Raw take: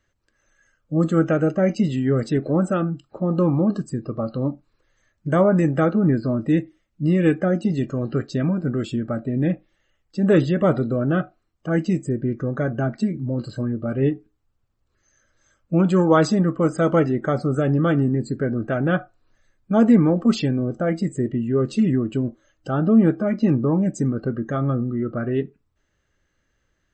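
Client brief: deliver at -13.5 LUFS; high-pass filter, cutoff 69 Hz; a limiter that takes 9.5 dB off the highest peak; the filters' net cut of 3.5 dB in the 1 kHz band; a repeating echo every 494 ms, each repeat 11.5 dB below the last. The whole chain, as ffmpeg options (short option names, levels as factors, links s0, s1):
-af "highpass=69,equalizer=f=1000:t=o:g=-5,alimiter=limit=0.2:level=0:latency=1,aecho=1:1:494|988|1482:0.266|0.0718|0.0194,volume=3.16"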